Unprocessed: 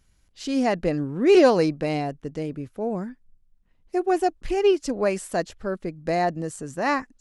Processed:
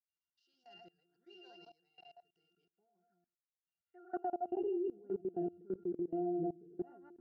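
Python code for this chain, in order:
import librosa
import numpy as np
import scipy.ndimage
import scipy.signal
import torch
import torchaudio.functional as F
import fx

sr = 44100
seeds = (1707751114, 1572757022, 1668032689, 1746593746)

y = fx.reverse_delay(x, sr, ms=106, wet_db=-1.5)
y = fx.octave_resonator(y, sr, note='F', decay_s=0.21)
y = fx.filter_sweep_bandpass(y, sr, from_hz=5100.0, to_hz=350.0, start_s=3.37, end_s=4.88, q=3.6)
y = fx.level_steps(y, sr, step_db=22)
y = F.gain(torch.from_numpy(y), 9.0).numpy()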